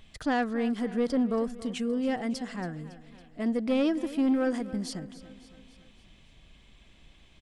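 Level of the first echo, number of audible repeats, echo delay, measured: -16.0 dB, 4, 0.278 s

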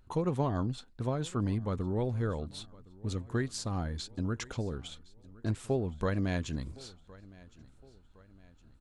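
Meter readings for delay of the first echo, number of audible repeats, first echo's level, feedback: 1.063 s, 2, -22.0 dB, 46%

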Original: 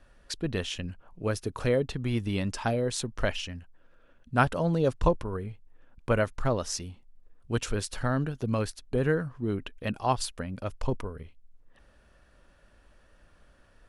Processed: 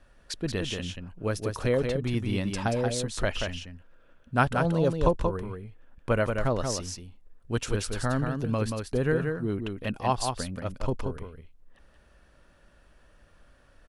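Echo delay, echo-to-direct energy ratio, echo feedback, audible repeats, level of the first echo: 0.181 s, -5.0 dB, no steady repeat, 1, -5.0 dB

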